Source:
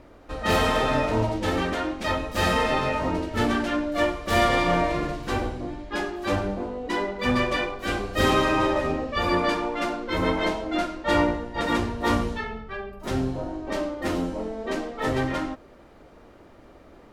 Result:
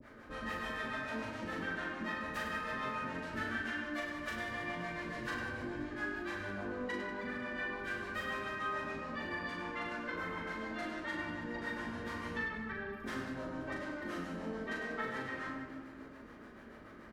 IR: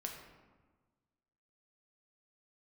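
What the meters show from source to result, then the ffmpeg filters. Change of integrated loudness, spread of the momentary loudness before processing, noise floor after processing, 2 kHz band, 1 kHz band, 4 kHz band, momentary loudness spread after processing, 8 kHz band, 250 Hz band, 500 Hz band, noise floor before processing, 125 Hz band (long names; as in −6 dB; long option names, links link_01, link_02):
−14.0 dB, 9 LU, −53 dBFS, −8.5 dB, −15.5 dB, −17.0 dB, 4 LU, −18.0 dB, −15.0 dB, −17.5 dB, −50 dBFS, −18.0 dB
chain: -filter_complex "[0:a]highpass=frequency=74:poles=1,equalizer=frequency=580:width=5.7:gain=9.5,bandreject=frequency=1400:width=21,acrossover=split=250|610|2100[link_01][link_02][link_03][link_04];[link_01]acompressor=threshold=-38dB:ratio=4[link_05];[link_02]acompressor=threshold=-33dB:ratio=4[link_06];[link_03]acompressor=threshold=-28dB:ratio=4[link_07];[link_04]acompressor=threshold=-38dB:ratio=4[link_08];[link_05][link_06][link_07][link_08]amix=inputs=4:normalize=0,equalizer=frequency=250:width_type=o:width=0.67:gain=4,equalizer=frequency=630:width_type=o:width=0.67:gain=-8,equalizer=frequency=1600:width_type=o:width=0.67:gain=11,acompressor=threshold=-33dB:ratio=6,acrossover=split=500[link_09][link_10];[link_09]aeval=exprs='val(0)*(1-1/2+1/2*cos(2*PI*6.9*n/s))':channel_layout=same[link_11];[link_10]aeval=exprs='val(0)*(1-1/2-1/2*cos(2*PI*6.9*n/s))':channel_layout=same[link_12];[link_11][link_12]amix=inputs=2:normalize=0,aecho=1:1:40|100|190|325|527.5:0.631|0.398|0.251|0.158|0.1[link_13];[1:a]atrim=start_sample=2205[link_14];[link_13][link_14]afir=irnorm=-1:irlink=0"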